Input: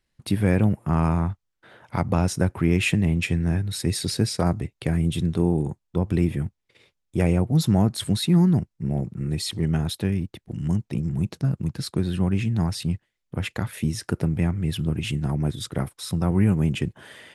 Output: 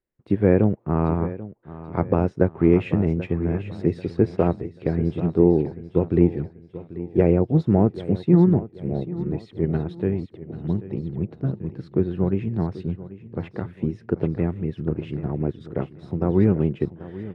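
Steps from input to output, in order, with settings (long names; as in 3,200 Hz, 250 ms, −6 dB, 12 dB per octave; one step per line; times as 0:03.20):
low-pass filter 2,000 Hz 12 dB per octave
parametric band 410 Hz +11 dB 1.2 octaves
repeating echo 787 ms, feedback 50%, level −11 dB
expander for the loud parts 1.5 to 1, over −37 dBFS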